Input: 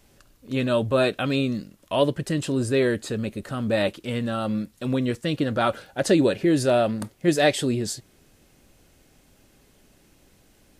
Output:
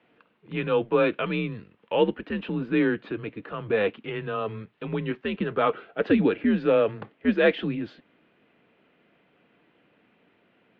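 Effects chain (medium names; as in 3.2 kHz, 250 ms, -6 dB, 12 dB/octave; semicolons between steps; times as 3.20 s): mistuned SSB -99 Hz 310–3100 Hz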